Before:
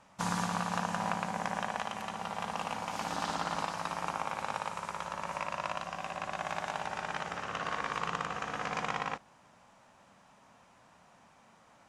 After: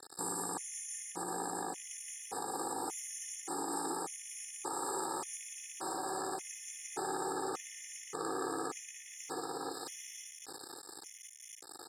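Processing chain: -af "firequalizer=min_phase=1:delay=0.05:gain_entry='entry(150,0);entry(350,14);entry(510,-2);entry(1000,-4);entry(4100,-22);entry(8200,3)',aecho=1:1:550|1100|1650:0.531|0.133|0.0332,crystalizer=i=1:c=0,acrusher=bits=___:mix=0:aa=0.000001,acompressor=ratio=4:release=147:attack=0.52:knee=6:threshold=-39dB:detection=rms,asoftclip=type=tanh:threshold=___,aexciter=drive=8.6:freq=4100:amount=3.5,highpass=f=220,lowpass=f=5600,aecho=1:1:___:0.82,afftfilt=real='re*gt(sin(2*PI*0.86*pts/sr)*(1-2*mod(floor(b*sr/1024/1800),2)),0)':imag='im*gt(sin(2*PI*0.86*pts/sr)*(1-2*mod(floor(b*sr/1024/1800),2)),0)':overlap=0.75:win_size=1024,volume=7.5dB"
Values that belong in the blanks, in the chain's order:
8, -38.5dB, 2.4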